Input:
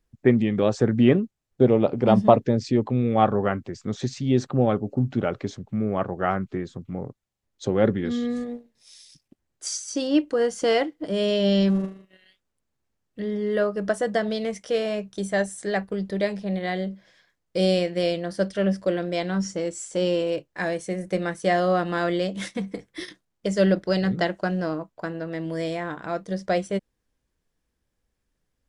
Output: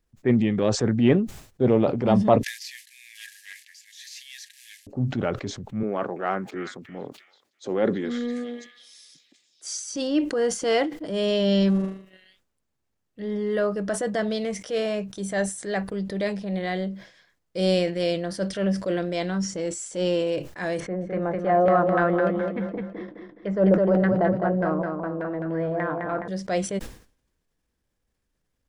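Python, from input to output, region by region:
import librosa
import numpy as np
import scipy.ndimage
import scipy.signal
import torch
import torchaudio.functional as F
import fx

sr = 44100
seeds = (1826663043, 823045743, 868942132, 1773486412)

y = fx.chain(x, sr, fx.cvsd(bps=64000),
    fx.brickwall_highpass(low_hz=1600.0),
    fx.doppler_dist(depth_ms=0.19), at=(2.43, 4.87))
y = fx.chain(y, sr, fx.cheby1_highpass(hz=280.0, order=2),
    fx.echo_stepped(ms=331, hz=2200.0, octaves=0.7, feedback_pct=70, wet_db=-6.0), at=(5.83, 9.76))
y = fx.chain(y, sr, fx.filter_lfo_lowpass(shape='saw_down', hz=3.4, low_hz=560.0, high_hz=1900.0, q=1.8),
    fx.echo_feedback(ms=209, feedback_pct=36, wet_db=-5), at=(20.8, 26.28))
y = fx.transient(y, sr, attack_db=-6, sustain_db=2)
y = fx.sustainer(y, sr, db_per_s=120.0)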